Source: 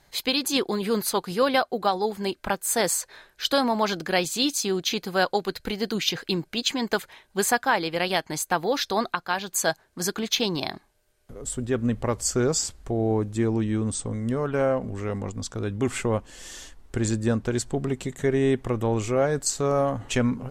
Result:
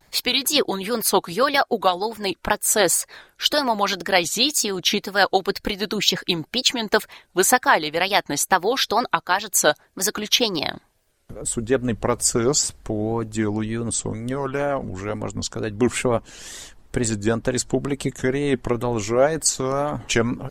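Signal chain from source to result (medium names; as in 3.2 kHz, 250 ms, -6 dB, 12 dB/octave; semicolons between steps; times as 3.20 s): wow and flutter 120 cents; harmonic-percussive split harmonic -9 dB; trim +7 dB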